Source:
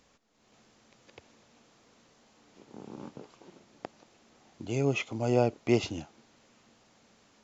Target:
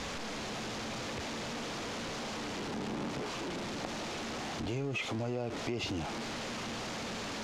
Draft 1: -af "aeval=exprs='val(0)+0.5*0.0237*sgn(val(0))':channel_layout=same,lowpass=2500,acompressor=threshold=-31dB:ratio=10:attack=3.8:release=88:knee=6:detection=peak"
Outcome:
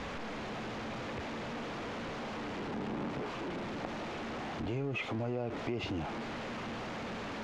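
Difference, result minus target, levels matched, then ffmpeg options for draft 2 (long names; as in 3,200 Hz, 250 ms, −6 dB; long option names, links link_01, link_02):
4,000 Hz band −5.0 dB
-af "aeval=exprs='val(0)+0.5*0.0237*sgn(val(0))':channel_layout=same,lowpass=5500,acompressor=threshold=-31dB:ratio=10:attack=3.8:release=88:knee=6:detection=peak"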